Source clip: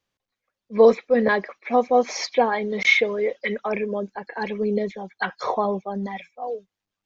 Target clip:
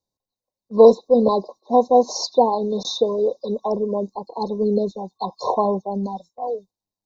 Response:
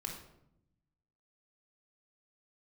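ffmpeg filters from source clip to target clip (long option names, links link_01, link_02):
-af "afftfilt=real='re*(1-between(b*sr/4096,1100,3600))':imag='im*(1-between(b*sr/4096,1100,3600))':win_size=4096:overlap=0.75,agate=range=-7dB:threshold=-47dB:ratio=16:detection=peak,volume=3.5dB"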